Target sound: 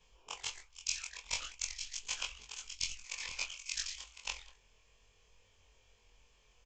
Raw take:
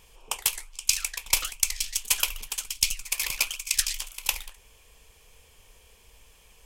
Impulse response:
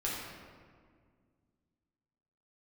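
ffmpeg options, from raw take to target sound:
-af "afftfilt=real='re':imag='-im':win_size=2048:overlap=0.75,aresample=16000,aresample=44100,volume=-6.5dB"

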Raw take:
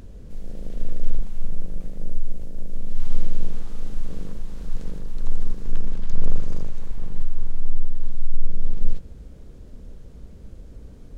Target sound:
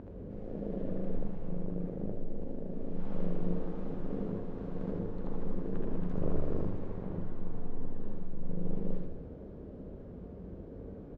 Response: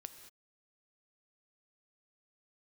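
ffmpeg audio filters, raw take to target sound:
-filter_complex "[0:a]bandpass=f=400:t=q:w=0.65:csg=0,aemphasis=mode=reproduction:type=75kf,aecho=1:1:68|79:0.473|0.631[a];[1:a]atrim=start_sample=2205[b];[a][b]afir=irnorm=-1:irlink=0,volume=9.5dB"

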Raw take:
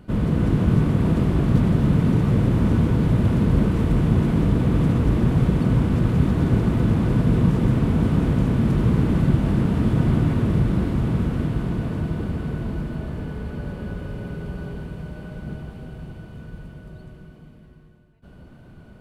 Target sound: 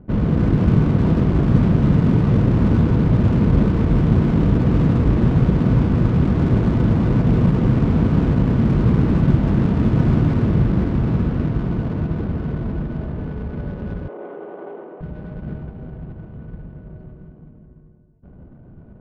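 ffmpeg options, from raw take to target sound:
-filter_complex "[0:a]adynamicsmooth=sensitivity=5:basefreq=550,asettb=1/sr,asplit=3[a][b][c];[a]atrim=end=6.124[d];[b]atrim=start=6.12:end=7.67,asetpts=PTS-STARTPTS,afade=t=in:d=0.004:c=qsin,afade=t=out:st=1.546:d=0.004:c=qsin,asoftclip=type=hard:threshold=-12.5dB[e];[c]atrim=start=7.666[f];[d][e]acrossfade=d=0.004:c1=hsin:c2=qsin[g];[g][f]acrossfade=d=0.004:c1=qsin:c2=hsin,asettb=1/sr,asplit=3[h][i][j];[h]atrim=end=14.084[k];[i]atrim=start=14.08:end=15.01,asetpts=PTS-STARTPTS,afade=t=in:d=0.004:c=qsin,afade=t=out:st=0.926:d=0.004:c=qsin,highpass=f=330:w=0.5412,highpass=f=330:w=1.3066,equalizer=f=350:t=q:w=4:g=6,equalizer=f=510:t=q:w=4:g=4,equalizer=f=740:t=q:w=4:g=8,equalizer=f=1.1k:t=q:w=4:g=4,equalizer=f=1.7k:t=q:w=4:g=-4,equalizer=f=2.5k:t=q:w=4:g=-5,lowpass=f=2.8k:w=0.5412,lowpass=f=2.8k:w=1.3066[l];[j]atrim=start=15.006[m];[k][l]acrossfade=d=0.004:c1=hsin:c2=qsin[n];[n][m]acrossfade=d=0.004:c1=qsin:c2=hsin,volume=3dB"

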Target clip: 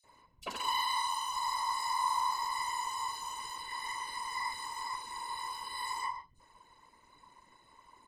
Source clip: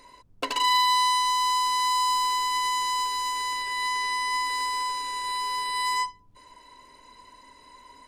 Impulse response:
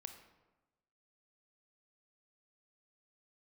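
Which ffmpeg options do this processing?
-filter_complex "[1:a]atrim=start_sample=2205,afade=t=out:st=0.24:d=0.01,atrim=end_sample=11025[a];[0:a][a]afir=irnorm=-1:irlink=0,afftfilt=real='hypot(re,im)*cos(2*PI*random(0))':imag='hypot(re,im)*sin(2*PI*random(1))':win_size=512:overlap=0.75,acrossover=split=3800[b][c];[b]adelay=40[d];[d][c]amix=inputs=2:normalize=0,volume=1.5dB"

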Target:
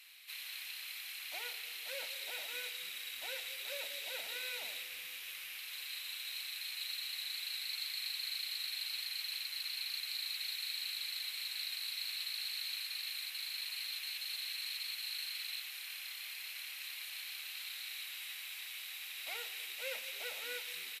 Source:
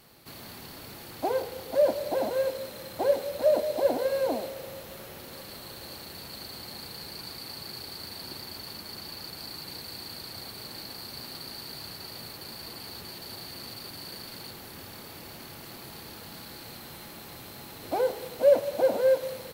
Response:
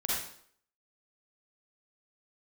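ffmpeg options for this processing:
-filter_complex "[0:a]highpass=f=2.6k:t=q:w=3.3,asplit=6[a][b][c][d][e][f];[b]adelay=280,afreqshift=-130,volume=-22dB[g];[c]adelay=560,afreqshift=-260,volume=-26.2dB[h];[d]adelay=840,afreqshift=-390,volume=-30.3dB[i];[e]adelay=1120,afreqshift=-520,volume=-34.5dB[j];[f]adelay=1400,afreqshift=-650,volume=-38.6dB[k];[a][g][h][i][j][k]amix=inputs=6:normalize=0,asetrate=41013,aresample=44100,volume=-2dB"

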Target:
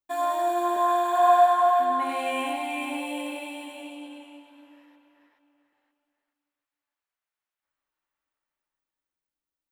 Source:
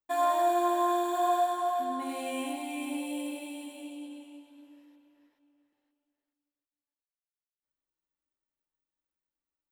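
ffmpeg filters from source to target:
-filter_complex "[0:a]asettb=1/sr,asplit=3[a][b][c];[a]atrim=end=0.764[d];[b]atrim=start=0.76:end=1.66,asetpts=PTS-STARTPTS,afade=t=in:d=0.004:c=qsin,afade=t=out:st=0.896:d=0.004:c=qsin,lowshelf=f=340:t=q:w=1.5:g=-9[e];[c]atrim=start=1.656[f];[d][e]acrossfade=d=0.004:c1=hsin:c2=qsin[g];[g][f]acrossfade=d=0.004:c1=qsin:c2=hsin,acrossover=split=700|2600|6000[h][i][j][k];[i]dynaudnorm=f=130:g=17:m=13dB[l];[h][l][j][k]amix=inputs=4:normalize=0"

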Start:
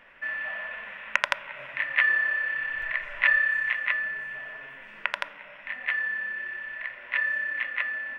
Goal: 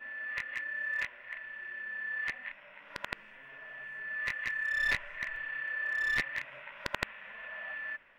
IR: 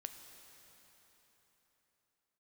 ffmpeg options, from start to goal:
-af "areverse,aeval=exprs='clip(val(0),-1,0.0891)':c=same,volume=-7.5dB"

